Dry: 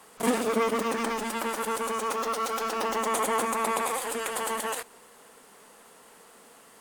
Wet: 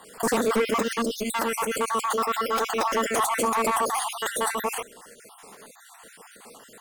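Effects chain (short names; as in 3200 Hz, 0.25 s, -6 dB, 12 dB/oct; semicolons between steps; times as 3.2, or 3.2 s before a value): random spectral dropouts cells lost 46%; in parallel at +0.5 dB: pump 146 bpm, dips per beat 2, -13 dB, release 0.108 s; on the sum: soft clip -18.5 dBFS, distortion -14 dB; gain +2 dB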